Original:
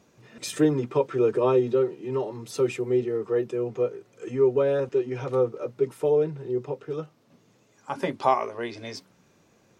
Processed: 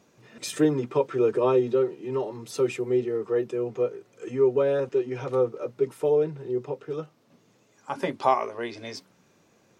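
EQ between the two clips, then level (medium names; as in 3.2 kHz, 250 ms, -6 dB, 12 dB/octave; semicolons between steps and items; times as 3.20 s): bass shelf 85 Hz -8 dB; 0.0 dB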